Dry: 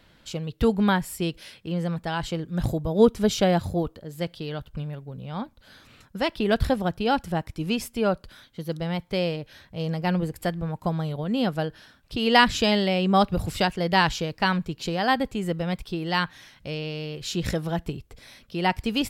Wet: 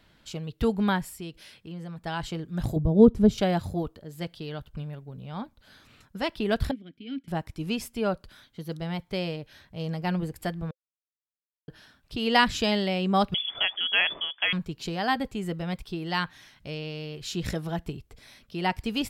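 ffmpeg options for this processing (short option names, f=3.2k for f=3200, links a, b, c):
-filter_complex "[0:a]asettb=1/sr,asplit=3[a][b][c];[a]atrim=end=1.094[d];[b]atrim=start=1.09:end=2.06,asetpts=PTS-STARTPTS,afade=t=in:d=0.004:c=qsin,afade=t=out:st=0.966:d=0.004:c=qsin,acompressor=threshold=-43dB:ratio=1.5:attack=3.2:release=140:knee=1:detection=peak[e];[c]atrim=start=2.056[f];[d][e]acrossfade=d=0.004:c1=hsin:c2=qsin[g];[g][f]acrossfade=d=0.004:c1=qsin:c2=hsin,asettb=1/sr,asplit=3[h][i][j];[h]atrim=end=2.764[k];[i]atrim=start=2.76:end=3.38,asetpts=PTS-STARTPTS,afade=t=in:d=0.004:c=qsin,afade=t=out:st=0.616:d=0.004:c=qsin,tiltshelf=f=670:g=10[l];[j]atrim=start=3.376[m];[k][l]acrossfade=d=0.004:c1=hsin:c2=qsin[n];[n][m]acrossfade=d=0.004:c1=qsin:c2=hsin,asettb=1/sr,asplit=3[o][p][q];[o]atrim=end=6.714[r];[p]atrim=start=6.71:end=7.28,asetpts=PTS-STARTPTS,afade=t=in:d=0.004:c=qsin,afade=t=out:st=0.566:d=0.004:c=qsin,asplit=3[s][t][u];[s]bandpass=f=270:t=q:w=8,volume=0dB[v];[t]bandpass=f=2.29k:t=q:w=8,volume=-6dB[w];[u]bandpass=f=3.01k:t=q:w=8,volume=-9dB[x];[v][w][x]amix=inputs=3:normalize=0[y];[q]atrim=start=7.276[z];[r][y]acrossfade=d=0.004:c1=hsin:c2=qsin[aa];[aa][z]acrossfade=d=0.004:c1=qsin:c2=hsin,asettb=1/sr,asplit=3[ab][ac][ad];[ab]atrim=end=13.344[ae];[ac]atrim=start=13.34:end=14.53,asetpts=PTS-STARTPTS,afade=t=in:d=0.004:c=qsin,afade=t=out:st=1.186:d=0.004:c=qsin,lowpass=f=3k:t=q:w=0.5098,lowpass=f=3k:t=q:w=0.6013,lowpass=f=3k:t=q:w=0.9,lowpass=f=3k:t=q:w=2.563,afreqshift=-3500[af];[ad]atrim=start=14.526[ag];[ae][af]acrossfade=d=0.004:c1=hsin:c2=qsin[ah];[ah][ag]acrossfade=d=0.004:c1=qsin:c2=hsin,asplit=3[ai][aj][ak];[ai]atrim=end=10.71,asetpts=PTS-STARTPTS,afade=t=out:st=10.706:d=0.004:c=hsin[al];[aj]atrim=start=10.71:end=11.68,asetpts=PTS-STARTPTS,volume=0[am];[ak]atrim=start=11.68,asetpts=PTS-STARTPTS,afade=t=in:d=0.004:c=hsin[an];[al][am][an]concat=n=3:v=0:a=1,bandreject=f=520:w=12,volume=-3.5dB"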